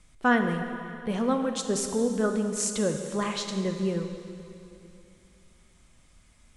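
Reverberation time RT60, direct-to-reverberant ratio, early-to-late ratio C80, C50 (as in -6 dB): 2.8 s, 5.0 dB, 7.0 dB, 6.0 dB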